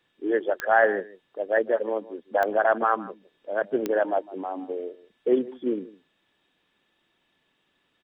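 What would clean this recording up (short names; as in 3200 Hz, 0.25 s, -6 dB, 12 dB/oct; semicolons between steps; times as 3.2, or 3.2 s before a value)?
de-click; inverse comb 0.156 s -19 dB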